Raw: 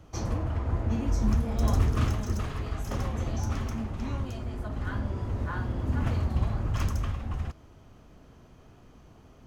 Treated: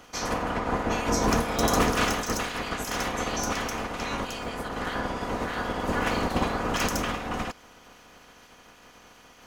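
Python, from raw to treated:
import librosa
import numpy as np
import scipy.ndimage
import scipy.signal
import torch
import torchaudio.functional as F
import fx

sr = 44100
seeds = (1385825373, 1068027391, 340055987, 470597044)

y = fx.spec_clip(x, sr, under_db=26)
y = y + 0.34 * np.pad(y, (int(4.1 * sr / 1000.0), 0))[:len(y)]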